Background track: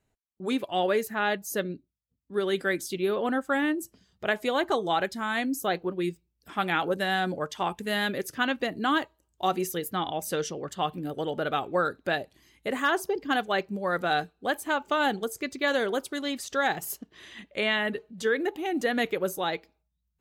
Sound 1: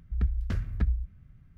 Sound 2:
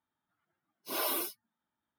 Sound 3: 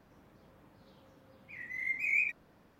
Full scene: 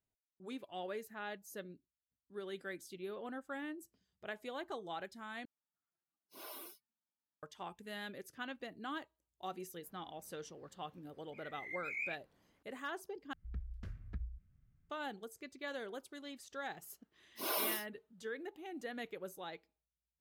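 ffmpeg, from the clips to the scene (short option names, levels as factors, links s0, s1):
-filter_complex "[2:a]asplit=2[s0][s1];[0:a]volume=0.133,asplit=3[s2][s3][s4];[s2]atrim=end=5.454[s5];[s0]atrim=end=1.98,asetpts=PTS-STARTPTS,volume=0.141[s6];[s3]atrim=start=7.426:end=13.334[s7];[1:a]atrim=end=1.57,asetpts=PTS-STARTPTS,volume=0.15[s8];[s4]atrim=start=14.896[s9];[3:a]atrim=end=2.79,asetpts=PTS-STARTPTS,volume=0.282,afade=t=in:d=0.004:c=hsin,afade=t=out:st=2.786:d=0.004:c=hsin,adelay=9840[s10];[s1]atrim=end=1.98,asetpts=PTS-STARTPTS,volume=0.668,afade=t=in:d=0.004:c=hsin,afade=t=out:st=1.976:d=0.004:c=hsin,adelay=16510[s11];[s5][s6]acrossfade=d=0.004:c1=hsin:c2=hsin[s12];[s12][s7]acrossfade=d=0.004:c1=hsin:c2=hsin[s13];[s13][s8]acrossfade=d=0.004:c1=hsin:c2=hsin[s14];[s14][s9]acrossfade=d=0.004:c1=hsin:c2=hsin[s15];[s15][s10][s11]amix=inputs=3:normalize=0"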